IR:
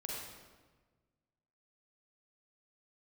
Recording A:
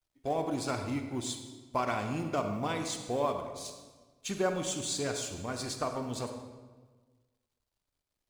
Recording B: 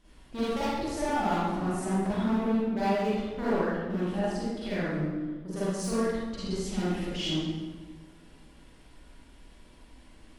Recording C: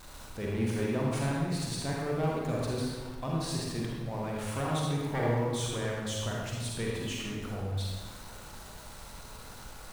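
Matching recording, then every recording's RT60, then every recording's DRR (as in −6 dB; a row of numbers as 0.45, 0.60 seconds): C; 1.4, 1.4, 1.4 seconds; 5.5, −11.5, −4.0 decibels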